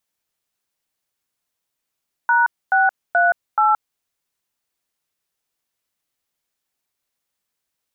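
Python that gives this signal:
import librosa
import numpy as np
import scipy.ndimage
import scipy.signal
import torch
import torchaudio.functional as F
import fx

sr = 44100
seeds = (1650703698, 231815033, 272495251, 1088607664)

y = fx.dtmf(sr, digits='#638', tone_ms=173, gap_ms=256, level_db=-15.0)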